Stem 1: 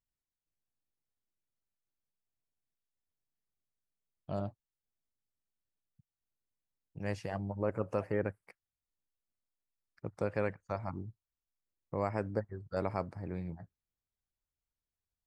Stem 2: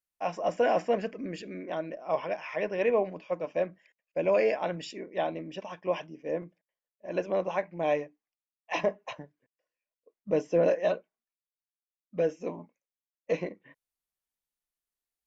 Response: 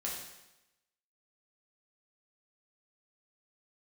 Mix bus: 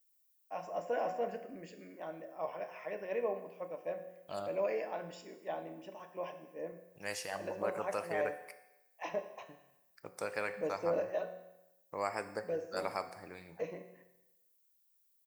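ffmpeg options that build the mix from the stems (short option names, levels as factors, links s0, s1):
-filter_complex "[0:a]aemphasis=mode=production:type=riaa,volume=0.944,asplit=2[s0][s1];[s1]volume=0.398[s2];[1:a]equalizer=f=3400:w=0.73:g=-8.5,adelay=300,volume=0.335,asplit=2[s3][s4];[s4]volume=0.596[s5];[2:a]atrim=start_sample=2205[s6];[s2][s5]amix=inputs=2:normalize=0[s7];[s7][s6]afir=irnorm=-1:irlink=0[s8];[s0][s3][s8]amix=inputs=3:normalize=0,lowshelf=f=420:g=-9"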